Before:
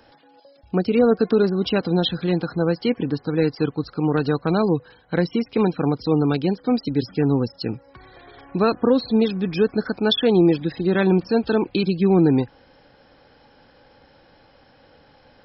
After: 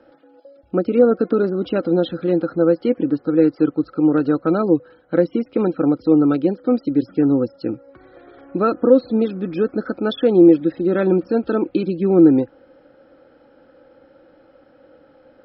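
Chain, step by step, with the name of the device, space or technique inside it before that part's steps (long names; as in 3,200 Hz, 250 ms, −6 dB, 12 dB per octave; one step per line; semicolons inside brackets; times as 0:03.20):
inside a cardboard box (low-pass filter 3,600 Hz 12 dB per octave; hollow resonant body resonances 320/520/1,300 Hz, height 16 dB, ringing for 30 ms)
level −8 dB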